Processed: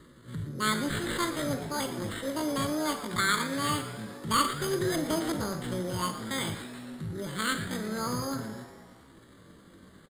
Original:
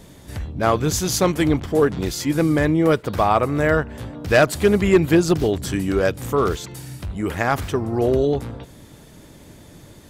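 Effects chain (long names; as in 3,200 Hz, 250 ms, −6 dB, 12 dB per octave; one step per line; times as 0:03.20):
harmonic generator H 5 −42 dB, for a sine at −6.5 dBFS
sample-rate reduction 3,000 Hz, jitter 0%
phaser with its sweep stopped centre 2,000 Hz, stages 8
pitch shifter +11 semitones
on a send: echo with shifted repeats 118 ms, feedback 60%, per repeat +140 Hz, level −14 dB
on the sum: four-comb reverb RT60 0.35 s, combs from 33 ms, DRR 8.5 dB
level −7.5 dB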